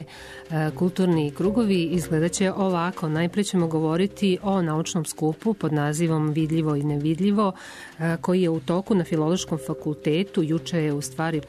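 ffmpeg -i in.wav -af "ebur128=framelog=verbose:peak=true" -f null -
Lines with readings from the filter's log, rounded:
Integrated loudness:
  I:         -23.9 LUFS
  Threshold: -34.1 LUFS
Loudness range:
  LRA:         1.2 LU
  Threshold: -43.9 LUFS
  LRA low:   -24.4 LUFS
  LRA high:  -23.2 LUFS
True peak:
  Peak:      -11.6 dBFS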